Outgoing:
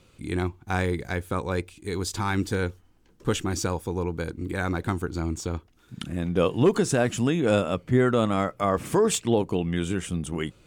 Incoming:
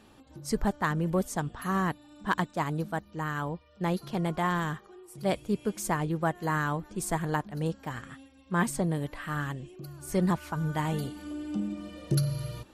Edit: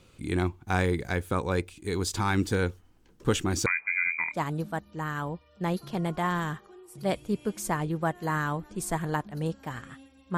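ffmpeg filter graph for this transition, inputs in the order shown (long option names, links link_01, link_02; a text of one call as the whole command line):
ffmpeg -i cue0.wav -i cue1.wav -filter_complex "[0:a]asettb=1/sr,asplit=3[link_01][link_02][link_03];[link_01]atrim=end=3.664[link_04];[link_02]atrim=start=3.66:end=4.37,asetpts=PTS-STARTPTS,afade=type=in:duration=0.004:curve=qsin,afade=type=out:start_time=0.706:duration=0.004:curve=qsin,lowpass=frequency=2100:width_type=q:width=0.5098,lowpass=frequency=2100:width_type=q:width=0.6013,lowpass=frequency=2100:width_type=q:width=0.9,lowpass=frequency=2100:width_type=q:width=2.563,afreqshift=-2500[link_05];[link_03]atrim=start=4.366[link_06];[link_04][link_05]acrossfade=duration=0.004:curve1=hsin:curve2=qsin[link_07];[link_07][link_06]acrossfade=duration=0.004:curve1=qsin:curve2=hsin,apad=whole_dur=10.37,atrim=end=10.37,atrim=end=4.37,asetpts=PTS-STARTPTS[link_08];[1:a]atrim=start=2.47:end=8.57,asetpts=PTS-STARTPTS[link_09];[link_08][link_09]acrossfade=duration=0.1:curve1=tri:curve2=tri" out.wav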